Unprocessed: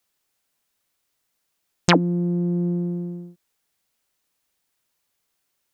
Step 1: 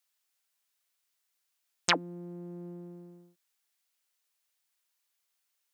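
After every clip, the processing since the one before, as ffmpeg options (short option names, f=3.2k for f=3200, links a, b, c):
-af "highpass=f=1.3k:p=1,volume=-4.5dB"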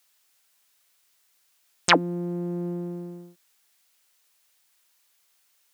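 -af "alimiter=level_in=14dB:limit=-1dB:release=50:level=0:latency=1,volume=-1dB"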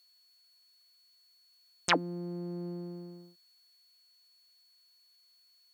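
-af "aeval=exprs='val(0)+0.00178*sin(2*PI*4400*n/s)':c=same,volume=-8.5dB"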